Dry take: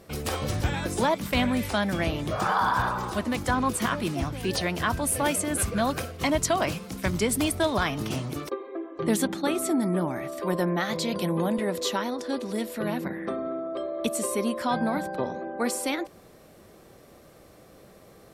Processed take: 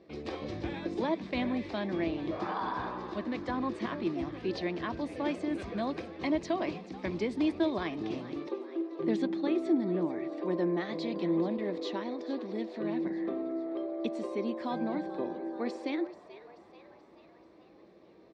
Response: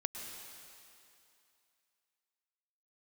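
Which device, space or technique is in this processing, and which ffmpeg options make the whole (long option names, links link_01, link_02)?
frequency-shifting delay pedal into a guitar cabinet: -filter_complex "[0:a]asplit=7[link_01][link_02][link_03][link_04][link_05][link_06][link_07];[link_02]adelay=434,afreqshift=120,volume=-16dB[link_08];[link_03]adelay=868,afreqshift=240,volume=-20.7dB[link_09];[link_04]adelay=1302,afreqshift=360,volume=-25.5dB[link_10];[link_05]adelay=1736,afreqshift=480,volume=-30.2dB[link_11];[link_06]adelay=2170,afreqshift=600,volume=-34.9dB[link_12];[link_07]adelay=2604,afreqshift=720,volume=-39.7dB[link_13];[link_01][link_08][link_09][link_10][link_11][link_12][link_13]amix=inputs=7:normalize=0,highpass=83,equalizer=frequency=87:width_type=q:width=4:gain=-7,equalizer=frequency=130:width_type=q:width=4:gain=-10,equalizer=frequency=330:width_type=q:width=4:gain=10,equalizer=frequency=860:width_type=q:width=4:gain=-3,equalizer=frequency=1400:width_type=q:width=4:gain=-10,equalizer=frequency=3000:width_type=q:width=4:gain=-6,lowpass=frequency=4200:width=0.5412,lowpass=frequency=4200:width=1.3066,volume=-7.5dB"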